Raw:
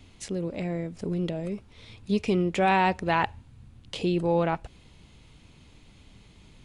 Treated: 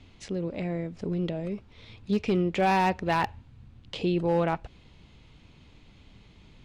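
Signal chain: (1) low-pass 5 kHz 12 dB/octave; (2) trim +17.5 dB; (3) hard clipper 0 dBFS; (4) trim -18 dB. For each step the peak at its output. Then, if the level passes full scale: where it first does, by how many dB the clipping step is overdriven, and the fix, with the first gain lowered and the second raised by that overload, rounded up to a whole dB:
-10.0 dBFS, +7.5 dBFS, 0.0 dBFS, -18.0 dBFS; step 2, 7.5 dB; step 2 +9.5 dB, step 4 -10 dB

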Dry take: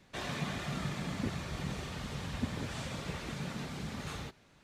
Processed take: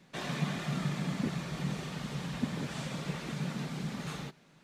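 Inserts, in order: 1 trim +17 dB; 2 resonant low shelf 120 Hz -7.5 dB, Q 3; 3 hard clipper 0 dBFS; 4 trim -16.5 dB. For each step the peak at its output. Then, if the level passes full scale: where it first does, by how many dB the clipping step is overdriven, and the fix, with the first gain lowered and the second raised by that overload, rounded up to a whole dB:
-4.0 dBFS, -2.0 dBFS, -2.0 dBFS, -18.5 dBFS; nothing clips

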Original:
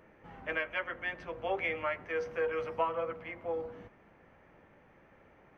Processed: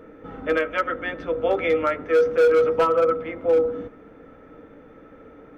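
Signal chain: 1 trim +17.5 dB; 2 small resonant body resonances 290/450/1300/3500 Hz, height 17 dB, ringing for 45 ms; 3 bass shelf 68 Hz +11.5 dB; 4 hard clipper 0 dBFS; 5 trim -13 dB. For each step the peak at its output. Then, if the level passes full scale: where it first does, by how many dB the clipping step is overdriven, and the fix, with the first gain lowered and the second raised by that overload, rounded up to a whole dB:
-0.5 dBFS, +7.0 dBFS, +7.0 dBFS, 0.0 dBFS, -13.0 dBFS; step 2, 7.0 dB; step 1 +10.5 dB, step 5 -6 dB

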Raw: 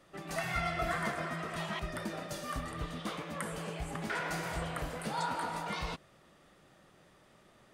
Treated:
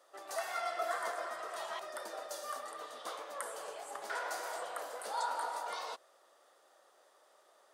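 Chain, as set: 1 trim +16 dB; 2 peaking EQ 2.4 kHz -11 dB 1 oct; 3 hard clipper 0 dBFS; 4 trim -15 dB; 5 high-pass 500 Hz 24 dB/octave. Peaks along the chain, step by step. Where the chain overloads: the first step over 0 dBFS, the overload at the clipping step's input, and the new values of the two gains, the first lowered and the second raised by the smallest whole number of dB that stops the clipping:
-5.0 dBFS, -6.0 dBFS, -6.0 dBFS, -21.0 dBFS, -21.0 dBFS; nothing clips

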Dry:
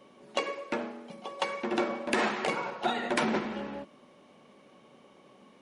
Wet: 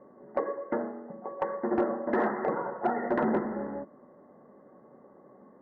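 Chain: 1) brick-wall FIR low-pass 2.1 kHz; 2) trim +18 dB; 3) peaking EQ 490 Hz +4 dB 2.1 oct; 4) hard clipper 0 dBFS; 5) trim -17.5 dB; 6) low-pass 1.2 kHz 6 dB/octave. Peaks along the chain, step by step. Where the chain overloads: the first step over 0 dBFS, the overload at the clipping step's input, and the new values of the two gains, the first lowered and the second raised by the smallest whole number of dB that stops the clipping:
-14.5 dBFS, +3.5 dBFS, +6.0 dBFS, 0.0 dBFS, -17.5 dBFS, -17.5 dBFS; step 2, 6.0 dB; step 2 +12 dB, step 5 -11.5 dB

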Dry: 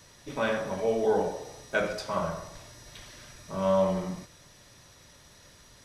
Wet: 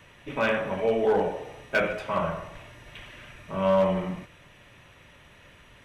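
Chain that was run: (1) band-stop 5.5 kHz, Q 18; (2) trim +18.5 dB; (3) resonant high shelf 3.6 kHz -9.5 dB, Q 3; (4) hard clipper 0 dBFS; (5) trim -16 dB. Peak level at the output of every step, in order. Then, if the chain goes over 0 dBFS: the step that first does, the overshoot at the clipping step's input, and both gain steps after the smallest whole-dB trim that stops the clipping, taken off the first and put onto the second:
-13.5 dBFS, +5.0 dBFS, +6.0 dBFS, 0.0 dBFS, -16.0 dBFS; step 2, 6.0 dB; step 2 +12.5 dB, step 5 -10 dB

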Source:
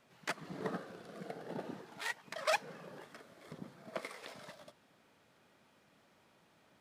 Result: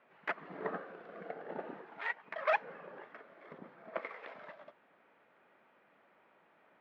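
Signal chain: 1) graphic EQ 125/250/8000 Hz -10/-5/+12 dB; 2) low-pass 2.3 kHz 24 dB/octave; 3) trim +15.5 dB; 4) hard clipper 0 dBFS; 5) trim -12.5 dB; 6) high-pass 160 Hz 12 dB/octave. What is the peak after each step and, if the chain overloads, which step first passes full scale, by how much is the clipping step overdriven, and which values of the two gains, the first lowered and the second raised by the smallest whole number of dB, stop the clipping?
-17.0 dBFS, -20.5 dBFS, -5.0 dBFS, -5.0 dBFS, -17.5 dBFS, -18.0 dBFS; nothing clips

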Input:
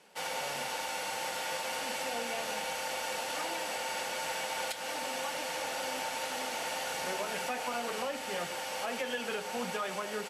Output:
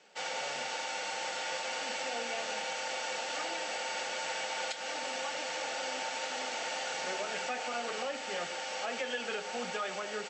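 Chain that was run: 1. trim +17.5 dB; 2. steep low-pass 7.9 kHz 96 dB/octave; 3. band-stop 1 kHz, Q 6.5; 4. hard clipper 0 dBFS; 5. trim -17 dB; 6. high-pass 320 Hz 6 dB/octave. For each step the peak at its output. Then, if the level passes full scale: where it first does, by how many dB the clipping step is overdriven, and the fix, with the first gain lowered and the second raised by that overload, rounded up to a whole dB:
-5.5 dBFS, -5.0 dBFS, -5.5 dBFS, -5.5 dBFS, -22.5 dBFS, -23.0 dBFS; nothing clips

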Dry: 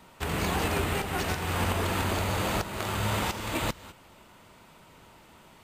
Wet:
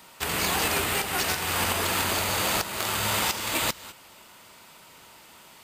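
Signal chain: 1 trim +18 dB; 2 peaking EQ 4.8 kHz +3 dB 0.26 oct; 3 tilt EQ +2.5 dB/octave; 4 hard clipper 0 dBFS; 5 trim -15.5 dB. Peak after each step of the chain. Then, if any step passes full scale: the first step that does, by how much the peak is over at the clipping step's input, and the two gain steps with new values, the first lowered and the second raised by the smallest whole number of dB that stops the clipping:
+2.5 dBFS, +2.5 dBFS, +6.0 dBFS, 0.0 dBFS, -15.5 dBFS; step 1, 6.0 dB; step 1 +12 dB, step 5 -9.5 dB

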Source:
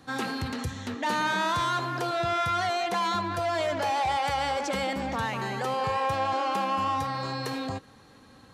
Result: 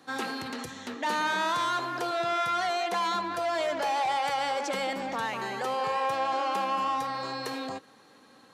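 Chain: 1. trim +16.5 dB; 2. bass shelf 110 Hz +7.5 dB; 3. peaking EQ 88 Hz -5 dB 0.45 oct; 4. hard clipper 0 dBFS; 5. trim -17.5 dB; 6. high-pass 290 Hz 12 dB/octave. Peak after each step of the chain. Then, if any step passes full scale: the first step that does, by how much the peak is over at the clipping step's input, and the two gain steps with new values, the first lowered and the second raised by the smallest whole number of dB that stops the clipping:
-3.0 dBFS, -1.0 dBFS, -1.5 dBFS, -1.5 dBFS, -19.0 dBFS, -18.5 dBFS; nothing clips

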